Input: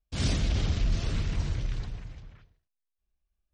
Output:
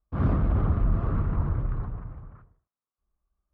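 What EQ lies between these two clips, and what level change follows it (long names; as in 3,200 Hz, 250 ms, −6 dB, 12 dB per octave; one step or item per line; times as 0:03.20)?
high-pass filter 260 Hz 6 dB per octave
low-pass with resonance 1,200 Hz, resonance Q 4.3
spectral tilt −4 dB per octave
0.0 dB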